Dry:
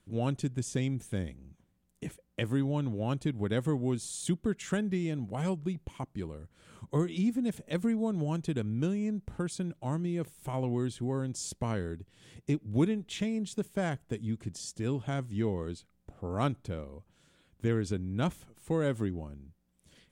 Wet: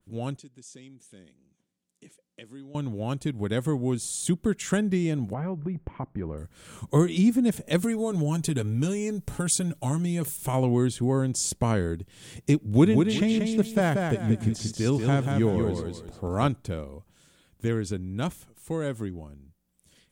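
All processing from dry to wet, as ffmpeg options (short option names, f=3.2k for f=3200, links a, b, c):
-filter_complex "[0:a]asettb=1/sr,asplit=3[a][b][c];[a]atrim=end=0.384[d];[b]atrim=start=0.38:end=2.75,asetpts=PTS-STARTPTS,afade=t=in:d=0.004:c=qsin,afade=t=out:st=2.366:d=0.004:c=qsin,equalizer=f=1k:t=o:w=2.5:g=-8.5,acompressor=threshold=-53dB:ratio=1.5:attack=3.2:release=140:knee=1:detection=peak,highpass=250,lowpass=7k[e];[c]atrim=start=2.746[f];[d][e]acrossfade=d=0.004:c1=hsin:c2=qsin[g];[g][f]acrossfade=d=0.004:c1=qsin:c2=hsin,asettb=1/sr,asplit=3[h][i][j];[h]atrim=end=5.334[k];[i]atrim=start=5.33:end=6.38,asetpts=PTS-STARTPTS,afade=t=in:d=0.004:c=qsin,afade=t=out:st=1.046:d=0.004:c=qsin,lowpass=f=1.9k:w=0.5412,lowpass=f=1.9k:w=1.3066,acompressor=threshold=-35dB:ratio=3:attack=3.2:release=140:knee=1:detection=peak[l];[j]atrim=start=6.376[m];[k][l]acrossfade=d=0.004:c1=hsin:c2=qsin[n];[n][m]acrossfade=d=0.004:c1=qsin:c2=hsin,asettb=1/sr,asplit=3[o][p][q];[o]atrim=end=7.834[r];[p]atrim=start=7.83:end=10.37,asetpts=PTS-STARTPTS,afade=t=in:d=0.004:c=qsin,afade=t=out:st=2.536:d=0.004:c=qsin,aemphasis=mode=production:type=cd,aecho=1:1:7.1:0.54,atrim=end_sample=112014,acompressor=threshold=-33dB:ratio=2:attack=3.2:release=140:knee=1:detection=peak[s];[q]atrim=start=10.366[t];[r][s]acrossfade=d=0.004:c1=hsin:c2=qsin[u];[u][t]acrossfade=d=0.004:c1=qsin:c2=hsin,asettb=1/sr,asplit=3[v][w][x];[v]atrim=end=12.664[y];[w]atrim=start=12.66:end=16.48,asetpts=PTS-STARTPTS,afade=t=in:d=0.004:c=qsin,afade=t=out:st=3.816:d=0.004:c=qsin,acrossover=split=4900[z][aa];[aa]acompressor=threshold=-55dB:ratio=4:attack=1:release=60[ab];[z][ab]amix=inputs=2:normalize=0,aecho=1:1:185|370|555|740:0.631|0.196|0.0606|0.0188,atrim=end_sample=168462[ac];[x]atrim=start=16.476[ad];[y][ac]acrossfade=d=0.004:c1=hsin:c2=qsin[ae];[ae][ad]acrossfade=d=0.004:c1=qsin:c2=hsin,highshelf=f=6k:g=9.5,dynaudnorm=f=490:g=17:m=10dB,adynamicequalizer=threshold=0.01:dfrequency=2100:dqfactor=0.7:tfrequency=2100:tqfactor=0.7:attack=5:release=100:ratio=0.375:range=2.5:mode=cutabove:tftype=highshelf,volume=-1.5dB"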